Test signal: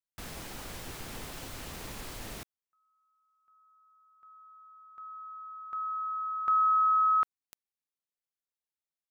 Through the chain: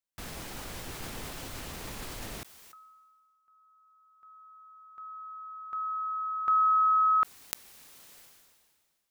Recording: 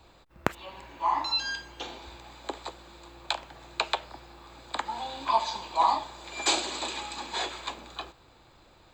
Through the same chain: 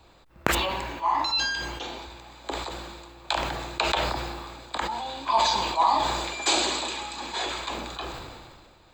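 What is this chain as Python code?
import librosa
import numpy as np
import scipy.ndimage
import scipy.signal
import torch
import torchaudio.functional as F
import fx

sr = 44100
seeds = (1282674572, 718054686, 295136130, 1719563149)

y = fx.sustainer(x, sr, db_per_s=31.0)
y = F.gain(torch.from_numpy(y), 1.0).numpy()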